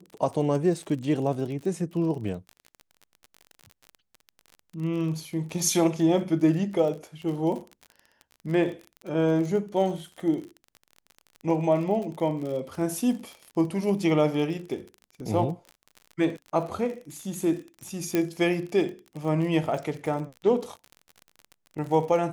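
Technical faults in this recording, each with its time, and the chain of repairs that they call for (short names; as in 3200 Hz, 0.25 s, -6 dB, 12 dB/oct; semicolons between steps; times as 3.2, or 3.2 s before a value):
crackle 40/s -34 dBFS
18.15 pop -11 dBFS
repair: de-click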